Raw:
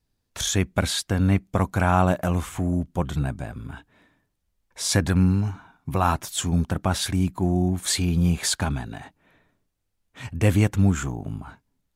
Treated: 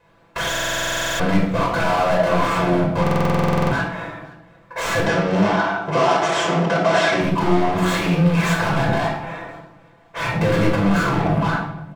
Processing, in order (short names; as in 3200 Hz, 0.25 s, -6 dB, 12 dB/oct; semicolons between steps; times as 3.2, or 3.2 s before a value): median filter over 9 samples; bell 770 Hz +7 dB 1.8 oct; comb 6 ms, depth 81%; limiter -13 dBFS, peak gain reduction 12 dB; overdrive pedal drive 34 dB, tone 2800 Hz, clips at -13 dBFS; 5.01–7.21 speaker cabinet 200–8900 Hz, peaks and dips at 390 Hz +7 dB, 660 Hz +8 dB, 1900 Hz +4 dB, 3100 Hz +4 dB, 5600 Hz +6 dB; feedback echo 0.519 s, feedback 24%, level -24 dB; shoebox room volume 2200 m³, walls furnished, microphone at 5.2 m; stuck buffer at 0.5/3.02, samples 2048, times 14; gain -5.5 dB